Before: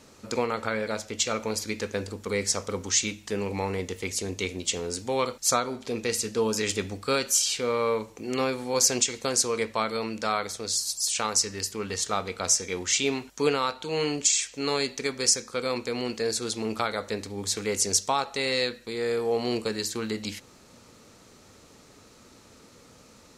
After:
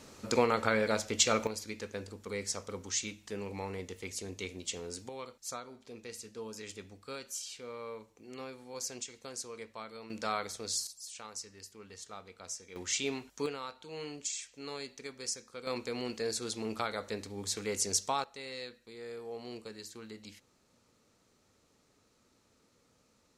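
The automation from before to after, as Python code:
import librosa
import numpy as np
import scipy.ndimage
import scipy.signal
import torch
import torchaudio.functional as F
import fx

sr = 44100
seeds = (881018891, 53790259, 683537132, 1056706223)

y = fx.gain(x, sr, db=fx.steps((0.0, 0.0), (1.47, -10.0), (5.09, -17.5), (10.1, -7.0), (10.87, -19.0), (12.76, -8.5), (13.46, -15.0), (15.67, -7.0), (18.24, -16.5)))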